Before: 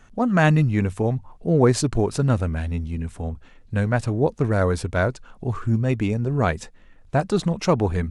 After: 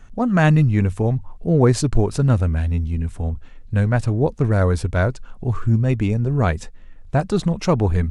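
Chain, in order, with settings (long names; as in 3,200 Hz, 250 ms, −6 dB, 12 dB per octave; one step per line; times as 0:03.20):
low-shelf EQ 99 Hz +11 dB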